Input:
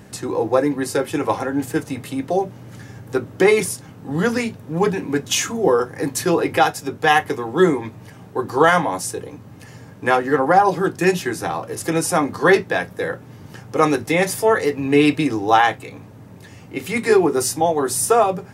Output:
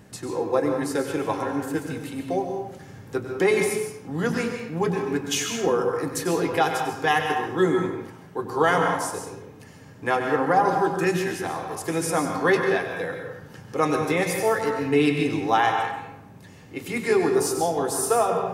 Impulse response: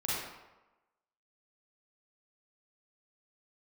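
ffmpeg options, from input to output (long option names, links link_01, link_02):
-filter_complex "[0:a]asplit=2[link_01][link_02];[1:a]atrim=start_sample=2205,asetrate=52920,aresample=44100,adelay=96[link_03];[link_02][link_03]afir=irnorm=-1:irlink=0,volume=-8dB[link_04];[link_01][link_04]amix=inputs=2:normalize=0,volume=-6.5dB"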